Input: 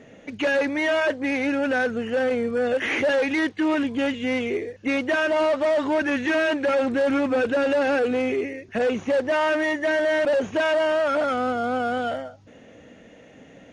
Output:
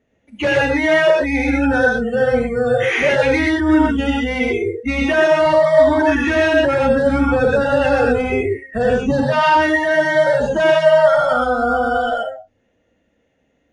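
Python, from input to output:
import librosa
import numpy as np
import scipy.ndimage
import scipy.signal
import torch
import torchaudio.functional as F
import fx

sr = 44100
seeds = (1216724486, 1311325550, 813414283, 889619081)

y = fx.octave_divider(x, sr, octaves=2, level_db=-5.0)
y = fx.noise_reduce_blind(y, sr, reduce_db=24)
y = fx.graphic_eq(y, sr, hz=(125, 250, 500, 1000, 2000, 4000, 8000), db=(8, 7, -7, 4, -5, 8, -4), at=(9.06, 9.57))
y = fx.rev_gated(y, sr, seeds[0], gate_ms=150, shape='rising', drr_db=-1.5)
y = F.gain(torch.from_numpy(y), 4.0).numpy()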